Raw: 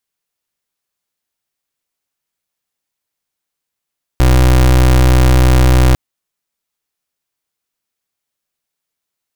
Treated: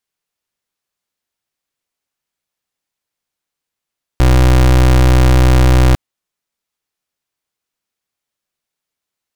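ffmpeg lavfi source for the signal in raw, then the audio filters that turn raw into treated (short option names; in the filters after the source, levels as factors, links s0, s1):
-f lavfi -i "aevalsrc='0.398*(2*lt(mod(63.1*t,1),0.29)-1)':d=1.75:s=44100"
-af "highshelf=f=9100:g=-6"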